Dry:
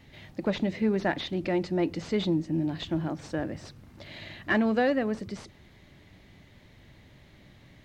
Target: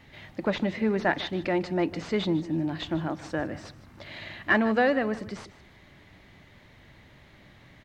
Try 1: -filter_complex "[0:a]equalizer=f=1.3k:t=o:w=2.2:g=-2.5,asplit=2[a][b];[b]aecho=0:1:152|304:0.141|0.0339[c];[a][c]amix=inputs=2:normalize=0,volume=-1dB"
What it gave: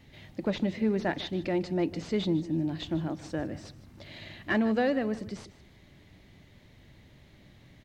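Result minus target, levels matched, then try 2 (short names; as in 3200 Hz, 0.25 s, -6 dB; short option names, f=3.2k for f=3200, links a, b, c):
1000 Hz band -4.0 dB
-filter_complex "[0:a]equalizer=f=1.3k:t=o:w=2.2:g=6.5,asplit=2[a][b];[b]aecho=0:1:152|304:0.141|0.0339[c];[a][c]amix=inputs=2:normalize=0,volume=-1dB"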